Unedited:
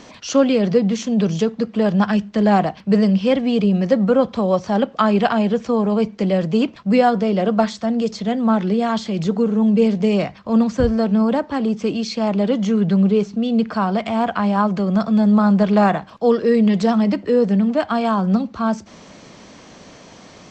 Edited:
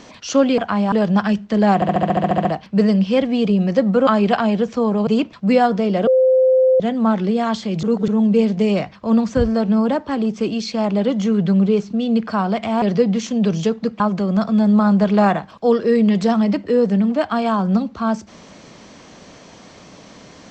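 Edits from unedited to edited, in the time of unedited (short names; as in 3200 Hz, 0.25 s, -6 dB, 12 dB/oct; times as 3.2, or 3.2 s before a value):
0.58–1.76 swap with 14.25–14.59
2.59 stutter 0.07 s, 11 plays
4.21–4.99 cut
5.99–6.5 cut
7.5–8.23 bleep 518 Hz -10 dBFS
9.26–9.51 reverse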